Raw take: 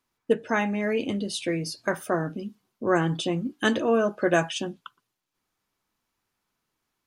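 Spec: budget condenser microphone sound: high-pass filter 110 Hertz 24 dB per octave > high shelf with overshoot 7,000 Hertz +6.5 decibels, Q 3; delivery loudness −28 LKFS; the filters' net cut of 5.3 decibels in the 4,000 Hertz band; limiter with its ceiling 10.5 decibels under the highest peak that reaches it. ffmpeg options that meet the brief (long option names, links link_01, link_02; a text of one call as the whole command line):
ffmpeg -i in.wav -af "equalizer=frequency=4000:width_type=o:gain=-5,alimiter=limit=-20dB:level=0:latency=1,highpass=frequency=110:width=0.5412,highpass=frequency=110:width=1.3066,highshelf=frequency=7000:width_type=q:width=3:gain=6.5,volume=2.5dB" out.wav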